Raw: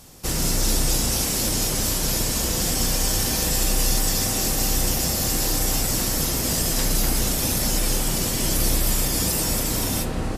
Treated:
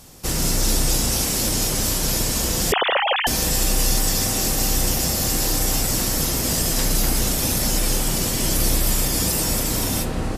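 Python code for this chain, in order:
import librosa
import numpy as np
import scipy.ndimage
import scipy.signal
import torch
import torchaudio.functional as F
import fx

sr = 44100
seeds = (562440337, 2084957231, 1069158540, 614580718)

y = fx.sine_speech(x, sr, at=(2.72, 3.27))
y = y * 10.0 ** (1.5 / 20.0)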